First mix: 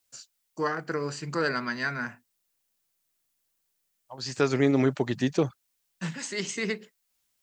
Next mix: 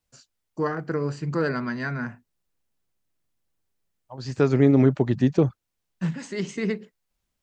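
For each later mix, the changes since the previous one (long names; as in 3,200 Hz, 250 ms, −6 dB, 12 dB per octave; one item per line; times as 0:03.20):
master: add spectral tilt −3 dB per octave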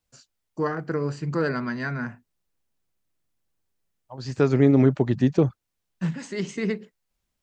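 nothing changed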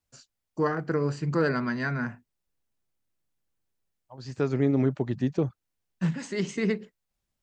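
second voice −6.5 dB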